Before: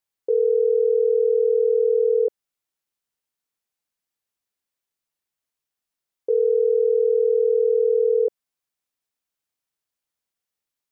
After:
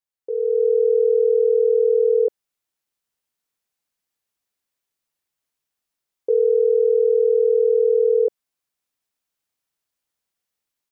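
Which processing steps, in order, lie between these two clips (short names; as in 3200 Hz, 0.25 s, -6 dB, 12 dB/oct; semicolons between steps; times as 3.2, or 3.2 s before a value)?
AGC gain up to 10 dB; gain -7 dB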